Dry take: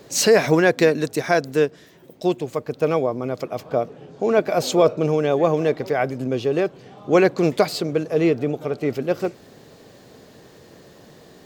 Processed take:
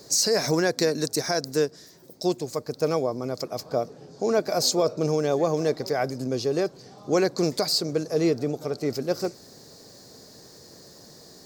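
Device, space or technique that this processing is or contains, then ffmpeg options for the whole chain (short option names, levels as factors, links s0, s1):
over-bright horn tweeter: -af "highshelf=f=3800:t=q:w=3:g=8,alimiter=limit=0.398:level=0:latency=1:release=138,volume=0.631"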